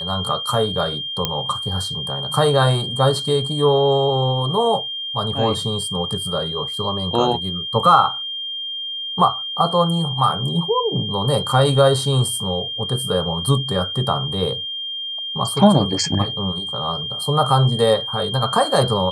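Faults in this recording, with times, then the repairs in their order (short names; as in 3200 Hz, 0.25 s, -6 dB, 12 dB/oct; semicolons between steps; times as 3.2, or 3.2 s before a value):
tone 3200 Hz -25 dBFS
1.25 pop -4 dBFS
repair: de-click; notch 3200 Hz, Q 30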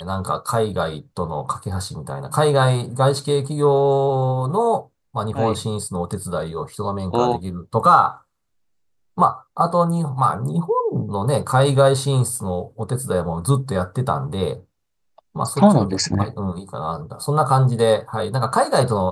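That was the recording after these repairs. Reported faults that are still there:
none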